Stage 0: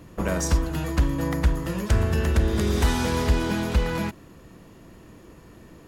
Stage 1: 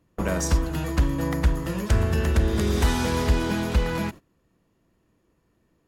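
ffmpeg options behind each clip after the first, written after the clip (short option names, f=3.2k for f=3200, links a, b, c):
-af "agate=range=-20dB:threshold=-37dB:ratio=16:detection=peak"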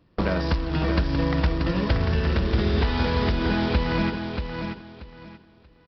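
-af "acompressor=threshold=-24dB:ratio=20,aresample=11025,acrusher=bits=4:mode=log:mix=0:aa=0.000001,aresample=44100,aecho=1:1:633|1266|1899:0.473|0.109|0.025,volume=5dB"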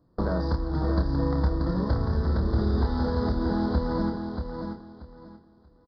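-filter_complex "[0:a]aresample=11025,aresample=44100,asuperstop=centerf=2600:order=4:qfactor=0.72,asplit=2[a][b];[b]adelay=28,volume=-6dB[c];[a][c]amix=inputs=2:normalize=0,volume=-3.5dB"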